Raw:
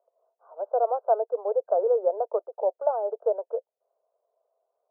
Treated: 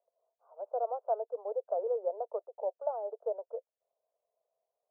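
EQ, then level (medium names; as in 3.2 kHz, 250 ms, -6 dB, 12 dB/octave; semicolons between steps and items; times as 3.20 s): Butterworth band-pass 890 Hz, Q 0.54; low-pass 1.2 kHz 12 dB/octave; -8.5 dB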